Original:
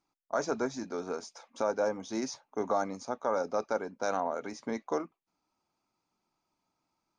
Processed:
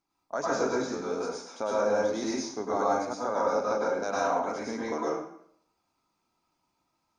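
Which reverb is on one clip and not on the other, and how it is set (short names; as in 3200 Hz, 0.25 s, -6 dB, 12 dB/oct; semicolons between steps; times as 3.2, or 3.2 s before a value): plate-style reverb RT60 0.64 s, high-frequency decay 0.9×, pre-delay 90 ms, DRR -6 dB; gain -2 dB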